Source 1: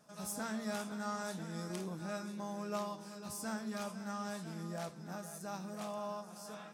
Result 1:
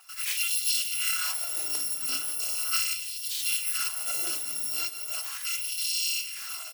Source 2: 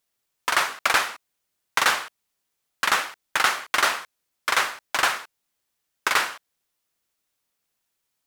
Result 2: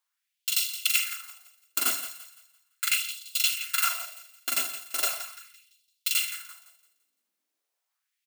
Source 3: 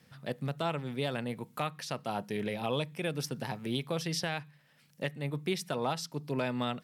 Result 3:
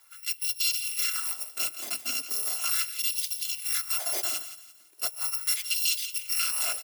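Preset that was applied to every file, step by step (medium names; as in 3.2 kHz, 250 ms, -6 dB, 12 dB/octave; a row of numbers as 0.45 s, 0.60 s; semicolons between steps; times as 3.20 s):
bit-reversed sample order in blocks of 256 samples; on a send: thinning echo 170 ms, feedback 36%, high-pass 880 Hz, level -12 dB; on the sum: LFO high-pass sine 0.38 Hz 230–3600 Hz; speakerphone echo 140 ms, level -17 dB; normalise loudness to -27 LUFS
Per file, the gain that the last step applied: +10.5 dB, -6.0 dB, +4.0 dB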